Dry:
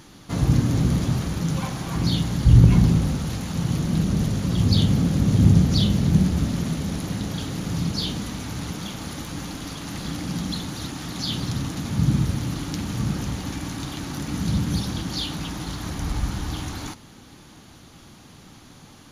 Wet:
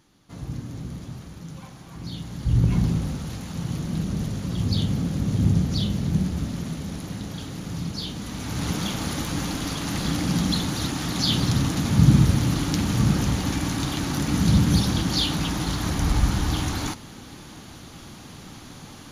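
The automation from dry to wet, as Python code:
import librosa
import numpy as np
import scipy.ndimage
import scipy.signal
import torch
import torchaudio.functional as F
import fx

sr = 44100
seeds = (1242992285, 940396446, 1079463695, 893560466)

y = fx.gain(x, sr, db=fx.line((1.95, -14.0), (2.8, -5.0), (8.14, -5.0), (8.71, 5.0)))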